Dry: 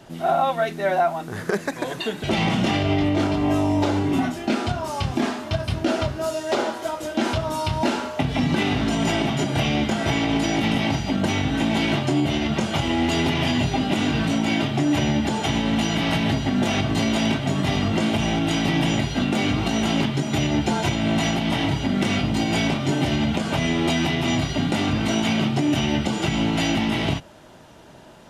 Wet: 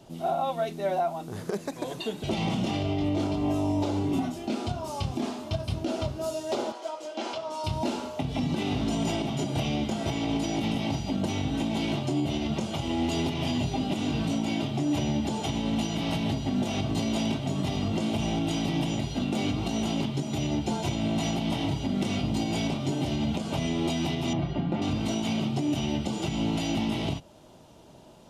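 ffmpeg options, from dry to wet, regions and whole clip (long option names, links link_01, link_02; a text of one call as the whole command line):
ffmpeg -i in.wav -filter_complex "[0:a]asettb=1/sr,asplit=3[link_01][link_02][link_03];[link_01]atrim=end=6.724[link_04];[link_02]atrim=start=6.72:end=7.64,asetpts=PTS-STARTPTS,afade=type=in:duration=0.004:curve=qsin,afade=type=out:start_time=0.916:duration=0.004:curve=qsin,highpass=480,lowpass=6000,bandreject=frequency=3700:width=20[link_05];[link_03]atrim=start=7.636[link_06];[link_04][link_05]acrossfade=duration=0.004:curve1=hsin:curve2=qsin[link_07];[link_07][link_06]acrossfade=duration=0.004:curve1=qsin:curve2=hsin,asettb=1/sr,asplit=3[link_08][link_09][link_10];[link_08]atrim=end=24.334[link_11];[link_09]atrim=start=24.33:end=24.82,asetpts=PTS-STARTPTS,afade=type=in:duration=0.004:curve=qsin,afade=type=out:start_time=0.486:duration=0.004:curve=qsin,lowpass=2000,aecho=1:1:5.8:0.45,atrim=end_sample=21609[link_12];[link_10]atrim=start=24.816[link_13];[link_11][link_12]acrossfade=duration=0.004:curve1=hsin:curve2=qsin[link_14];[link_14][link_13]acrossfade=duration=0.004:curve1=qsin:curve2=hsin,equalizer=frequency=1700:width=1.6:gain=-11.5,alimiter=limit=-14dB:level=0:latency=1:release=238,volume=-4.5dB" out.wav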